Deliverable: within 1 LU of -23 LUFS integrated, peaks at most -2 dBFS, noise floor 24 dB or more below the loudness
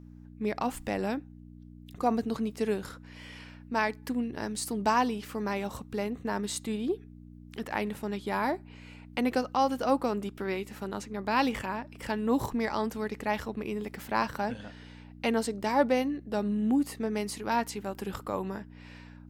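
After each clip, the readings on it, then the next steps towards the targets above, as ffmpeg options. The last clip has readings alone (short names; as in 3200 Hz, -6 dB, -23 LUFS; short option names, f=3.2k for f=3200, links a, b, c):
hum 60 Hz; harmonics up to 300 Hz; hum level -47 dBFS; loudness -31.5 LUFS; peak -11.5 dBFS; loudness target -23.0 LUFS
-> -af "bandreject=f=60:t=h:w=4,bandreject=f=120:t=h:w=4,bandreject=f=180:t=h:w=4,bandreject=f=240:t=h:w=4,bandreject=f=300:t=h:w=4"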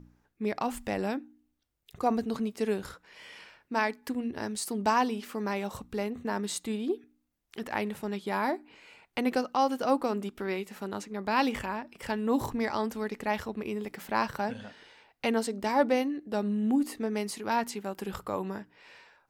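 hum none; loudness -31.5 LUFS; peak -12.0 dBFS; loudness target -23.0 LUFS
-> -af "volume=8.5dB"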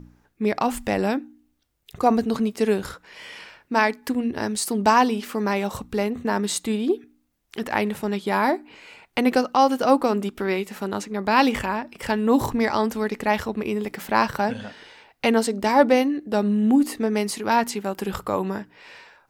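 loudness -23.0 LUFS; peak -3.5 dBFS; noise floor -67 dBFS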